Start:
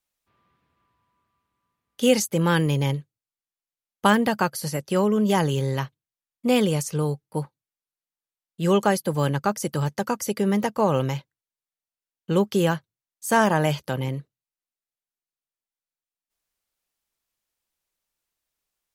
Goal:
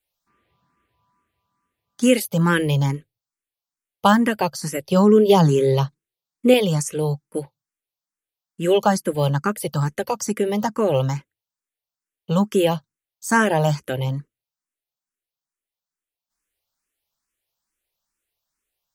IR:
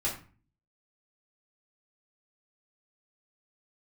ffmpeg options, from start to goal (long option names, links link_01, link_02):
-filter_complex "[0:a]asettb=1/sr,asplit=3[link_01][link_02][link_03];[link_01]atrim=end=4.924[link_04];[link_02]atrim=start=4.92:end=6.54,asetpts=PTS-STARTPTS,afade=type=in:duration=0.004:curve=qsin,afade=type=out:start_time=1.616:duration=0.004:curve=qsin,equalizer=frequency=160:width_type=o:width=0.67:gain=5,equalizer=frequency=400:width_type=o:width=0.67:gain=9,equalizer=frequency=4000:width_type=o:width=0.67:gain=4[link_05];[link_03]atrim=start=6.536[link_06];[link_04][link_05]acrossfade=duration=0.004:curve1=hsin:curve2=qsin[link_07];[link_07][link_06]acrossfade=duration=0.004:curve1=qsin:curve2=hsin,asplit=2[link_08][link_09];[link_09]afreqshift=2.3[link_10];[link_08][link_10]amix=inputs=2:normalize=1,volume=5dB"